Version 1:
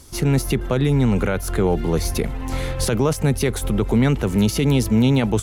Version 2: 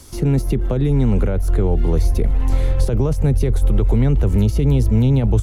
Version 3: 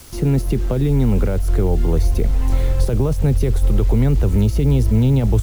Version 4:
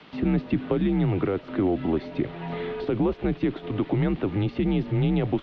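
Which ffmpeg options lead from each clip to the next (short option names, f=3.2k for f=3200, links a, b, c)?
-filter_complex "[0:a]asubboost=boost=6.5:cutoff=85,acrossover=split=230|690[a][b][c];[a]acompressor=threshold=-15dB:ratio=4[d];[b]acompressor=threshold=-24dB:ratio=4[e];[c]acompressor=threshold=-42dB:ratio=4[f];[d][e][f]amix=inputs=3:normalize=0,volume=3dB"
-af "acrusher=bits=6:mix=0:aa=0.000001"
-af "highpass=f=240:t=q:w=0.5412,highpass=f=240:t=q:w=1.307,lowpass=f=3.6k:t=q:w=0.5176,lowpass=f=3.6k:t=q:w=0.7071,lowpass=f=3.6k:t=q:w=1.932,afreqshift=-94"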